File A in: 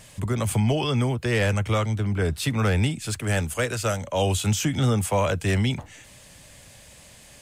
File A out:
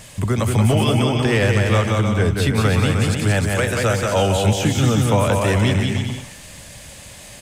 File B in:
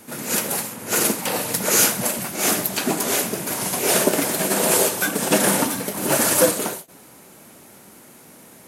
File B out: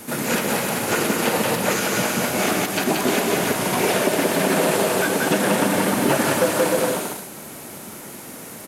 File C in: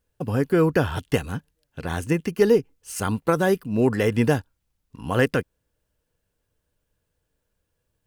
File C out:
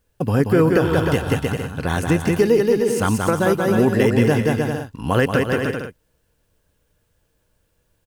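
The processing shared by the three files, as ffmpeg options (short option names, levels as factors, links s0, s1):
-filter_complex "[0:a]aecho=1:1:180|306|394.2|455.9|499.2:0.631|0.398|0.251|0.158|0.1,asplit=2[s0][s1];[s1]acompressor=threshold=0.0562:ratio=6,volume=0.841[s2];[s0][s2]amix=inputs=2:normalize=0,alimiter=limit=0.398:level=0:latency=1:release=275,acrossover=split=3800[s3][s4];[s4]acompressor=threshold=0.0316:ratio=4:attack=1:release=60[s5];[s3][s5]amix=inputs=2:normalize=0,volume=1.26"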